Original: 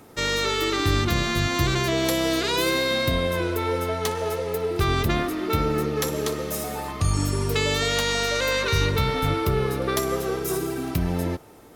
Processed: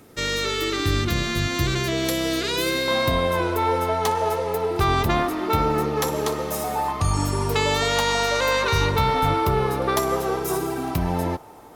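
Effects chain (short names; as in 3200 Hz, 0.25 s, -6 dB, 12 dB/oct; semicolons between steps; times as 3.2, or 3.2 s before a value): bell 880 Hz -5.5 dB 0.82 oct, from 2.88 s +10.5 dB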